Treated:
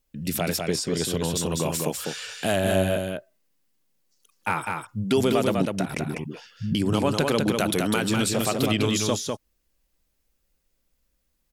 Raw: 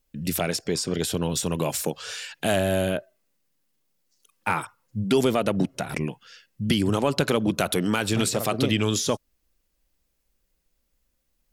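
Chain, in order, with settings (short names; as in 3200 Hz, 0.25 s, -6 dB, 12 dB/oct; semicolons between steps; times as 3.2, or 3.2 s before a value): 6.04–6.75 dispersion highs, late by 98 ms, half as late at 350 Hz; on a send: echo 0.2 s -4 dB; on the sum: gain -1 dB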